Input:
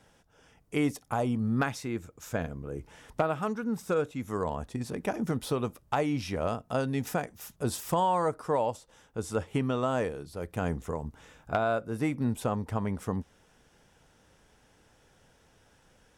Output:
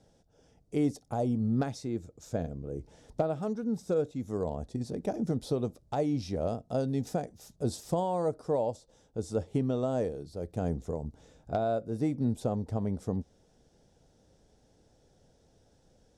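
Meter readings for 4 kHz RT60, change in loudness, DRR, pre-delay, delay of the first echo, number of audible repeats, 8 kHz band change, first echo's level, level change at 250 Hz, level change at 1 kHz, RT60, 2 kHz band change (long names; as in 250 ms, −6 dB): no reverb audible, −1.0 dB, no reverb audible, no reverb audible, no echo audible, no echo audible, −6.0 dB, no echo audible, 0.0 dB, −6.0 dB, no reverb audible, −13.5 dB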